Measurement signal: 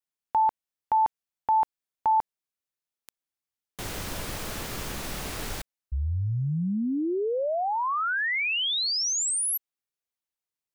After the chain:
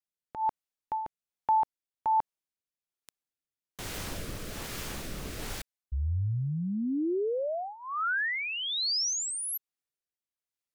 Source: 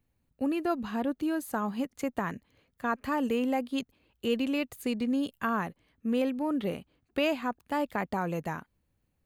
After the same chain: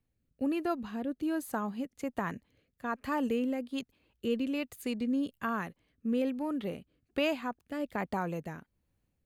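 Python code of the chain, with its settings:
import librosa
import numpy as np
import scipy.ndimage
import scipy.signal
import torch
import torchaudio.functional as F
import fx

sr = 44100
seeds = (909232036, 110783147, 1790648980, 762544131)

y = fx.rotary(x, sr, hz=1.2)
y = F.gain(torch.from_numpy(y), -1.5).numpy()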